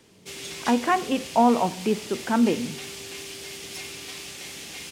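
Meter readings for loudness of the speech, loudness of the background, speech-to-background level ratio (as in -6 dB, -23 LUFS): -24.0 LUFS, -36.0 LUFS, 12.0 dB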